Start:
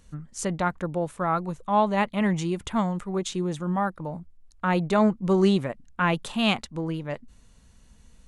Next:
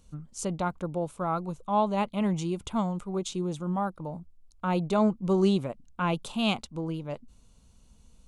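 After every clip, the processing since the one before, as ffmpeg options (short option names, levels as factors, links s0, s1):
-af "equalizer=f=1800:t=o:w=0.41:g=-14.5,volume=0.708"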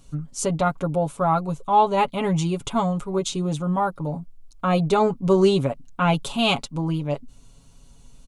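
-af "aecho=1:1:7.2:0.73,volume=2.11"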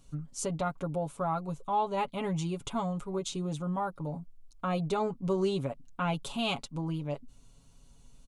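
-af "acompressor=threshold=0.0562:ratio=1.5,volume=0.422"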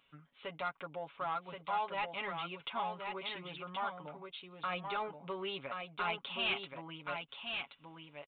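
-af "bandpass=f=2200:t=q:w=1.5:csg=0,aresample=8000,asoftclip=type=tanh:threshold=0.0178,aresample=44100,aecho=1:1:1076:0.562,volume=2.11"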